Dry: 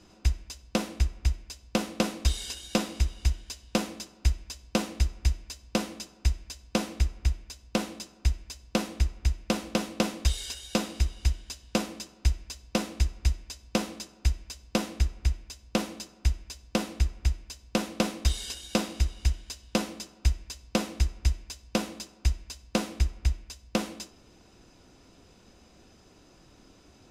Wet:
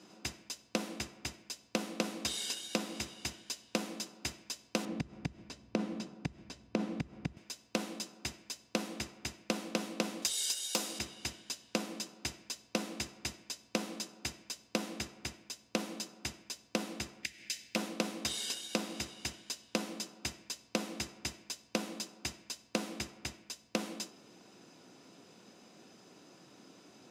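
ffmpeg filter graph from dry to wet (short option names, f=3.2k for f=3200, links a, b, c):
-filter_complex "[0:a]asettb=1/sr,asplit=3[a][b][c];[a]atrim=end=4.854[d];[b]atrim=start=4.85:end=7.37,asetpts=PTS-STARTPTS,afade=t=in:d=0.004:c=qsin,afade=t=out:st=2.516:d=0.004:c=qsin,aemphasis=mode=reproduction:type=riaa,acompressor=threshold=-17dB:ratio=16:attack=3.2:release=140:knee=1:detection=peak[e];[c]atrim=start=7.366[f];[d][e]acrossfade=d=0.004:c1=hsin:c2=qsin[g];[g][f]acrossfade=d=0.004:c1=qsin:c2=hsin,asettb=1/sr,asplit=3[h][i][j];[h]atrim=end=10.224[k];[i]atrim=start=10.22:end=10.99,asetpts=PTS-STARTPTS,afade=t=in:d=0.004:c=qsin,afade=t=out:st=0.766:d=0.004:c=qsin,bass=f=250:g=-9,treble=f=4k:g=10,aeval=exprs='0.188*(abs(mod(val(0)/0.188+3,4)-2)-1)':c=same[l];[j]atrim=start=10.986[m];[k][l]acrossfade=d=0.004:c1=hsin:c2=qsin[n];[n][m]acrossfade=d=0.004:c1=qsin:c2=hsin,asettb=1/sr,asplit=3[o][p][q];[o]atrim=end=17.234[r];[p]atrim=start=17.23:end=17.76,asetpts=PTS-STARTPTS,afade=t=in:d=0.004:c=qsin,afade=t=out:st=0.526:d=0.004:c=qsin,acompressor=threshold=-42dB:ratio=2.5:attack=3.2:release=140:knee=1:detection=peak,highshelf=f=1.5k:t=q:w=3:g=9,volume=19dB,asoftclip=hard,volume=-19dB[s];[q]atrim=start=17.756[t];[r][s]acrossfade=d=0.004:c1=hsin:c2=qsin[u];[u][t]acrossfade=d=0.004:c1=qsin:c2=hsin,highpass=f=150:w=0.5412,highpass=f=150:w=1.3066,acompressor=threshold=-30dB:ratio=6"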